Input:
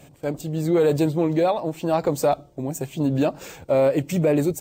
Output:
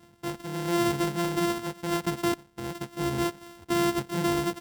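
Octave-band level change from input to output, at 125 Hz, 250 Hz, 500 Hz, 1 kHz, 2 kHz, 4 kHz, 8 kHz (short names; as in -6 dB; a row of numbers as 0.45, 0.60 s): -8.0, -5.0, -10.0, -3.5, +2.0, +4.5, -0.5 dB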